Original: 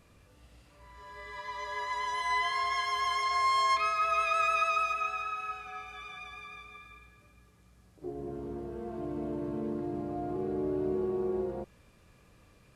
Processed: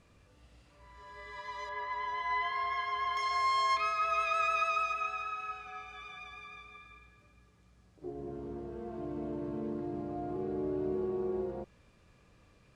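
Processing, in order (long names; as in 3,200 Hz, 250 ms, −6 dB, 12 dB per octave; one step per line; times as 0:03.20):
low-pass filter 8,500 Hz 12 dB per octave, from 0:01.69 2,600 Hz, from 0:03.17 7,600 Hz
level −2.5 dB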